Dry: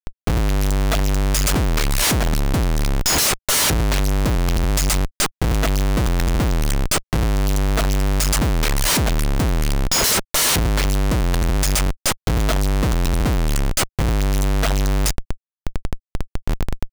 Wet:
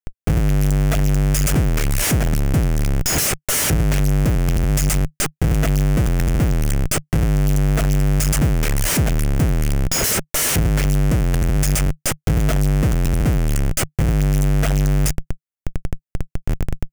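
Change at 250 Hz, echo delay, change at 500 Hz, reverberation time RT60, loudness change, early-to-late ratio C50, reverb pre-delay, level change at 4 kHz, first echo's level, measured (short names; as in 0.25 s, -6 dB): +2.0 dB, none, -1.0 dB, none, +0.5 dB, none, none, -5.5 dB, none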